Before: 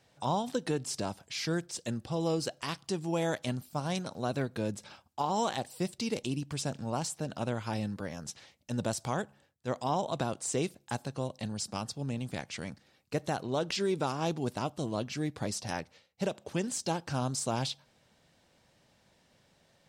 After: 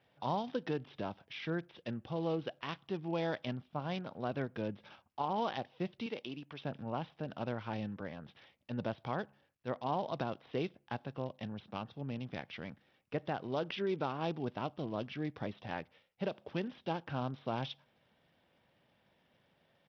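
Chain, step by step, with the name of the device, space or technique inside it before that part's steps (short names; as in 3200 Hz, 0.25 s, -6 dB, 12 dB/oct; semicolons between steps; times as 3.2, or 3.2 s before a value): 6.06–6.65 HPF 420 Hz 6 dB/oct; Bluetooth headset (HPF 100 Hz 6 dB/oct; downsampling 8000 Hz; gain -4 dB; SBC 64 kbps 44100 Hz)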